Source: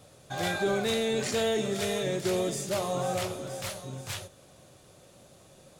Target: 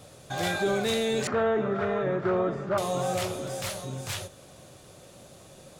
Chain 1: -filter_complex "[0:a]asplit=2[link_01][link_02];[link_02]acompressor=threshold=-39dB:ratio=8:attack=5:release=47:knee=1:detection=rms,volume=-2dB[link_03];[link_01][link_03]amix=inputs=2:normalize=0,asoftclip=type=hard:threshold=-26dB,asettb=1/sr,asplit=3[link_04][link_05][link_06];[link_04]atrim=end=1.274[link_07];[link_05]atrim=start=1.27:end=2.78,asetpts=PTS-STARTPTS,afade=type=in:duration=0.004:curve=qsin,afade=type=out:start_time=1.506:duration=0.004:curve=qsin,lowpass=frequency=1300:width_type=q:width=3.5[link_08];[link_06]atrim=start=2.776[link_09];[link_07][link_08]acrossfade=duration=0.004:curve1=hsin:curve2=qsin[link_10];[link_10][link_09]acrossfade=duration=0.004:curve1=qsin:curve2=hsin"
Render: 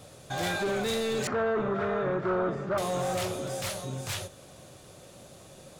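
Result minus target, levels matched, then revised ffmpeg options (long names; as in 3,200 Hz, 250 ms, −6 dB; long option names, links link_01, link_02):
hard clipping: distortion +29 dB
-filter_complex "[0:a]asplit=2[link_01][link_02];[link_02]acompressor=threshold=-39dB:ratio=8:attack=5:release=47:knee=1:detection=rms,volume=-2dB[link_03];[link_01][link_03]amix=inputs=2:normalize=0,asoftclip=type=hard:threshold=-18.5dB,asettb=1/sr,asplit=3[link_04][link_05][link_06];[link_04]atrim=end=1.274[link_07];[link_05]atrim=start=1.27:end=2.78,asetpts=PTS-STARTPTS,afade=type=in:duration=0.004:curve=qsin,afade=type=out:start_time=1.506:duration=0.004:curve=qsin,lowpass=frequency=1300:width_type=q:width=3.5[link_08];[link_06]atrim=start=2.776[link_09];[link_07][link_08]acrossfade=duration=0.004:curve1=hsin:curve2=qsin[link_10];[link_10][link_09]acrossfade=duration=0.004:curve1=qsin:curve2=hsin"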